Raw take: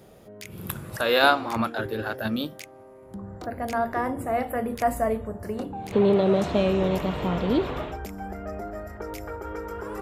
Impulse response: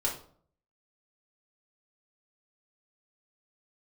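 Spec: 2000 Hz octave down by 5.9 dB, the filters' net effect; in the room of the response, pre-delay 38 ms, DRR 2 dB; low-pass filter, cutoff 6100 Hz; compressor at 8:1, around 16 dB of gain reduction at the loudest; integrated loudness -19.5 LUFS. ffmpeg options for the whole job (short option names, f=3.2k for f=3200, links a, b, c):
-filter_complex "[0:a]lowpass=6.1k,equalizer=f=2k:t=o:g=-9,acompressor=threshold=-33dB:ratio=8,asplit=2[a][b];[1:a]atrim=start_sample=2205,adelay=38[c];[b][c]afir=irnorm=-1:irlink=0,volume=-8dB[d];[a][d]amix=inputs=2:normalize=0,volume=16dB"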